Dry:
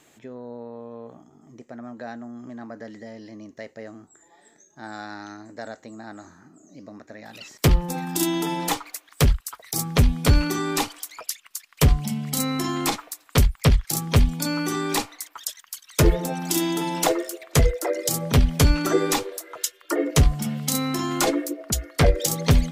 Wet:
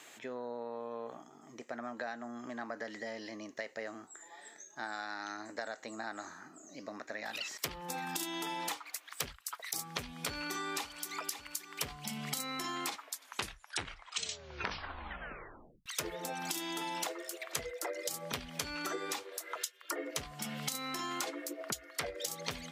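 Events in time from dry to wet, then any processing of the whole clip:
10.29–11.10 s: echo throw 550 ms, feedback 40%, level -15.5 dB
12.91 s: tape stop 2.95 s
whole clip: high-pass 1.4 kHz 6 dB/octave; treble shelf 4.7 kHz -7.5 dB; compression 10:1, threshold -44 dBFS; trim +8.5 dB

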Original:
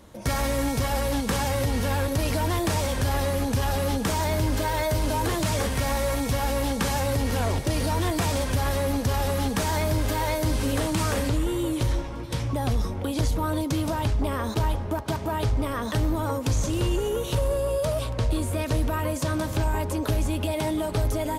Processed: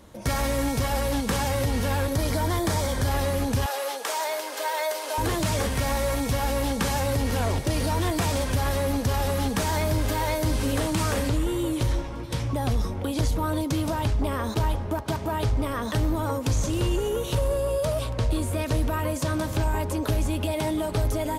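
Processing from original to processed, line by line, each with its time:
2.15–3.08 s: band-stop 2.7 kHz, Q 5.3
3.66–5.18 s: high-pass 490 Hz 24 dB/octave

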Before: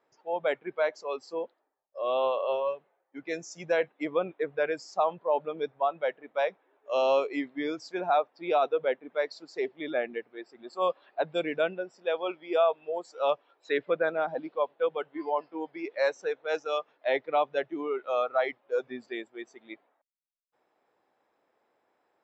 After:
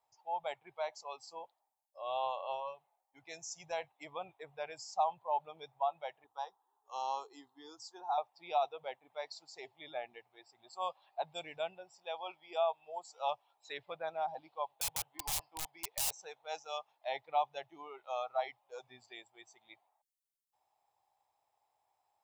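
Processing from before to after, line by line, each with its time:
6.24–8.18 s: static phaser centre 610 Hz, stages 6
14.68–16.23 s: integer overflow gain 27.5 dB
whole clip: FFT filter 110 Hz 0 dB, 230 Hz -24 dB, 510 Hz -18 dB, 820 Hz +2 dB, 1.5 kHz -17 dB, 2.5 kHz -7 dB, 8.5 kHz +5 dB; trim -1.5 dB

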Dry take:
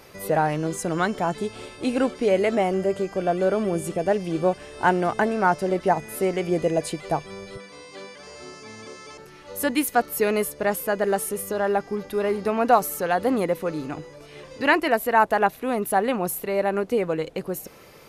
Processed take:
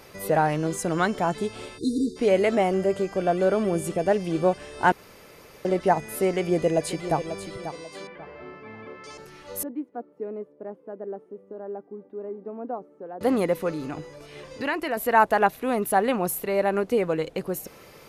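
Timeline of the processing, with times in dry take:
1.78–2.16 s: spectral selection erased 480–3600 Hz
4.92–5.65 s: room tone
6.34–7.17 s: echo throw 540 ms, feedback 30%, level -10.5 dB
8.07–9.04 s: low-pass 2.5 kHz 24 dB/octave
9.63–13.21 s: ladder band-pass 350 Hz, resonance 30%
13.72–14.97 s: compression 2:1, threshold -28 dBFS

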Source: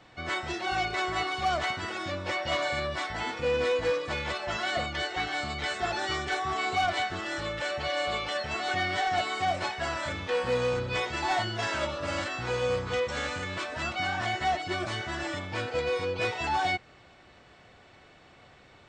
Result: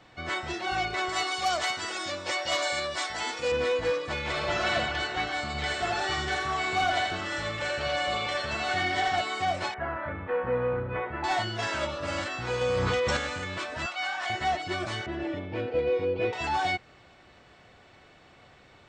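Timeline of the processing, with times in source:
1.09–3.52 s: tone controls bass -10 dB, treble +11 dB
4.19–4.72 s: reverb throw, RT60 2.9 s, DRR -2.5 dB
5.46–9.16 s: feedback delay 83 ms, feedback 33%, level -4 dB
9.74–11.24 s: low-pass 1.9 kHz 24 dB/octave
12.61–13.17 s: level flattener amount 100%
13.86–14.30 s: high-pass 710 Hz
15.06–16.33 s: FFT filter 160 Hz 0 dB, 390 Hz +7 dB, 1.2 kHz -9 dB, 2.6 kHz -4 dB, 9.1 kHz -26 dB

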